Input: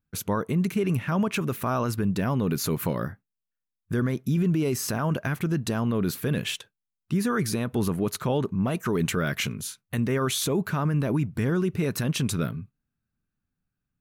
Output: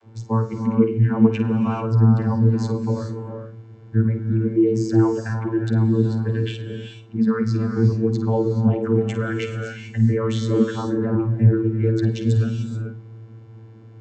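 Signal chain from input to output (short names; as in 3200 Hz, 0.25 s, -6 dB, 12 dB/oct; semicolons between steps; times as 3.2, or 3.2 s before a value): per-bin expansion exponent 2; in parallel at +3 dB: limiter -28 dBFS, peak gain reduction 9 dB; on the sum: added noise brown -43 dBFS; vocoder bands 32, saw 112 Hz; notch comb 640 Hz; on a send: flutter echo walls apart 8.8 m, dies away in 0.27 s; on the sum: non-linear reverb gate 0.46 s rising, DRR 5 dB; gain +7.5 dB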